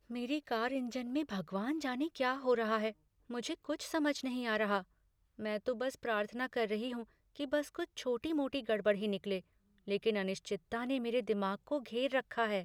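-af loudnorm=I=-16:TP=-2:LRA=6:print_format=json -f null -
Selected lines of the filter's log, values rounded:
"input_i" : "-36.4",
"input_tp" : "-19.3",
"input_lra" : "1.8",
"input_thresh" : "-46.6",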